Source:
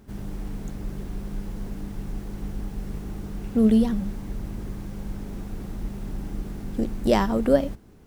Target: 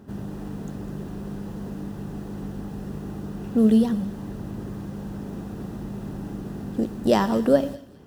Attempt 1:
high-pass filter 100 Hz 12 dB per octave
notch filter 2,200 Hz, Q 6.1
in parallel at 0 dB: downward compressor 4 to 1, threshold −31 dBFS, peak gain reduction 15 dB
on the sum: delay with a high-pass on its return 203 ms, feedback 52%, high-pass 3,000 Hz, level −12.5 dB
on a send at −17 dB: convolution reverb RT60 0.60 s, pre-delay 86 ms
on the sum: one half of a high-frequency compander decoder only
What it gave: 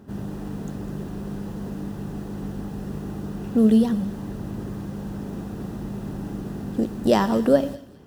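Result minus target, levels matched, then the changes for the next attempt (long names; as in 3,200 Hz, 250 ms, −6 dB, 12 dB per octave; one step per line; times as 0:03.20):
downward compressor: peak gain reduction −5.5 dB
change: downward compressor 4 to 1, threshold −38.5 dBFS, peak gain reduction 21 dB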